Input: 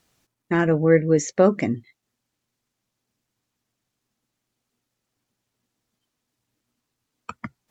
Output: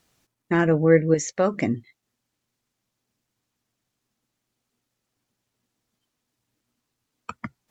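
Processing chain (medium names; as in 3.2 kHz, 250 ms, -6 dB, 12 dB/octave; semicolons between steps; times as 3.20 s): 1.14–1.54 s: peaking EQ 290 Hz -9 dB 2 oct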